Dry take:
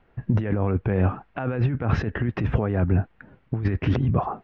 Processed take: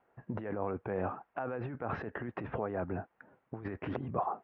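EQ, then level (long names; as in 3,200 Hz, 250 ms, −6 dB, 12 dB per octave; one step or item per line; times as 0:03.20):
resonant band-pass 820 Hz, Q 0.88
high-frequency loss of the air 70 metres
−4.5 dB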